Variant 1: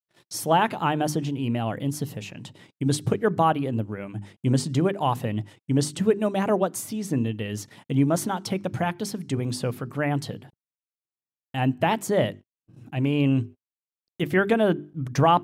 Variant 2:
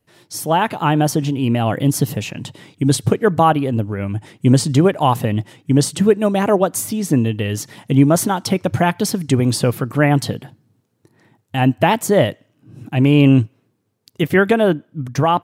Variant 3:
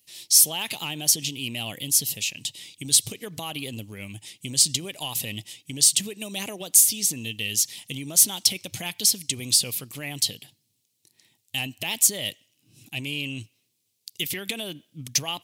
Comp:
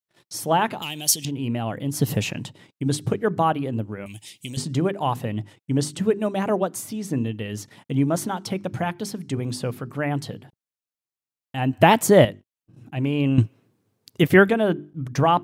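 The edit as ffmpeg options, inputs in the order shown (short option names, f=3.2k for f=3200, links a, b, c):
-filter_complex "[2:a]asplit=2[a][b];[1:a]asplit=3[c][d][e];[0:a]asplit=6[f][g][h][i][j][k];[f]atrim=end=0.822[l];[a]atrim=start=0.818:end=1.252[m];[g]atrim=start=1.248:end=2.14[n];[c]atrim=start=1.9:end=2.55[o];[h]atrim=start=2.31:end=4.062[p];[b]atrim=start=4.058:end=4.572[q];[i]atrim=start=4.568:end=11.732[r];[d]atrim=start=11.728:end=12.252[s];[j]atrim=start=12.248:end=13.382[t];[e]atrim=start=13.378:end=14.492[u];[k]atrim=start=14.488[v];[l][m]acrossfade=d=0.004:c1=hsin:c2=hsin[w];[w][n]acrossfade=d=0.004:c1=hsin:c2=hsin[x];[x][o]acrossfade=d=0.24:c1=tri:c2=tri[y];[y][p]acrossfade=d=0.24:c1=tri:c2=tri[z];[z][q]acrossfade=d=0.004:c1=hsin:c2=hsin[aa];[aa][r]acrossfade=d=0.004:c1=hsin:c2=hsin[ab];[ab][s]acrossfade=d=0.004:c1=hsin:c2=hsin[ac];[ac][t]acrossfade=d=0.004:c1=hsin:c2=hsin[ad];[ad][u]acrossfade=d=0.004:c1=hsin:c2=hsin[ae];[ae][v]acrossfade=d=0.004:c1=hsin:c2=hsin"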